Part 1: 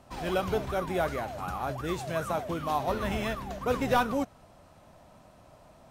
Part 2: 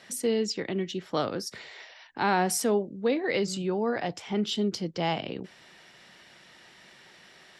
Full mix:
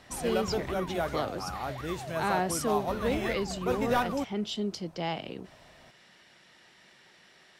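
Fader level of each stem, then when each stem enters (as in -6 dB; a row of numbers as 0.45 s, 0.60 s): -2.5 dB, -4.5 dB; 0.00 s, 0.00 s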